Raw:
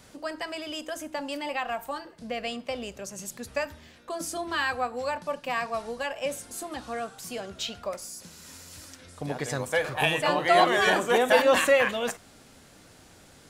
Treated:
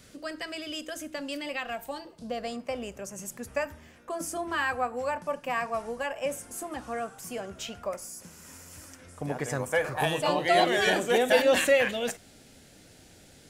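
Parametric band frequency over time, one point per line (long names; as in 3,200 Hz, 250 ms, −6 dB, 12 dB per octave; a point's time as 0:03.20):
parametric band −11.5 dB 0.64 octaves
0:01.66 880 Hz
0:02.76 4,000 Hz
0:09.83 4,000 Hz
0:10.52 1,100 Hz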